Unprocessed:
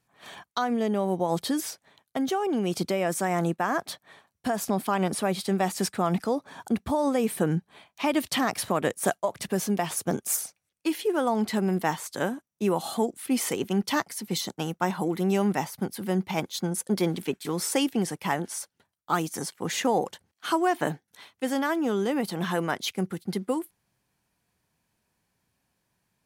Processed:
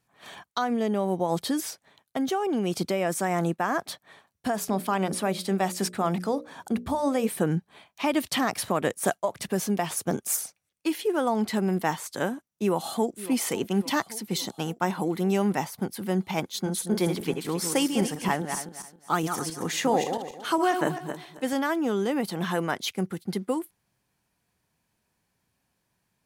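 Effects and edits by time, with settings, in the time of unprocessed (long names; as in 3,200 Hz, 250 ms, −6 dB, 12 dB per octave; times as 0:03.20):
0:04.53–0:07.29: mains-hum notches 60/120/180/240/300/360/420/480/540/600 Hz
0:12.48–0:13.33: delay throw 560 ms, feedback 65%, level −15.5 dB
0:16.53–0:21.53: feedback delay that plays each chunk backwards 135 ms, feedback 46%, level −6.5 dB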